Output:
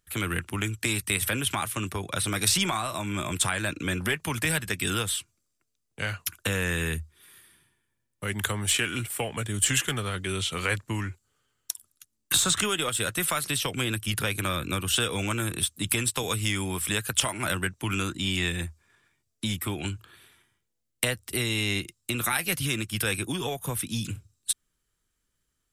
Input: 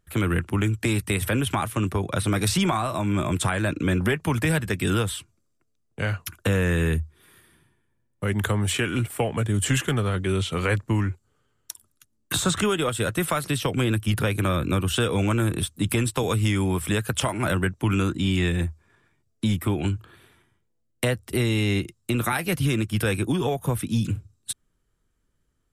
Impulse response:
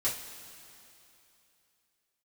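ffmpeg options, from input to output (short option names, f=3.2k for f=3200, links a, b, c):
-af "tiltshelf=f=1.5k:g=-6.5,aeval=exprs='0.631*(cos(1*acos(clip(val(0)/0.631,-1,1)))-cos(1*PI/2))+0.0398*(cos(3*acos(clip(val(0)/0.631,-1,1)))-cos(3*PI/2))+0.00501*(cos(8*acos(clip(val(0)/0.631,-1,1)))-cos(8*PI/2))':c=same"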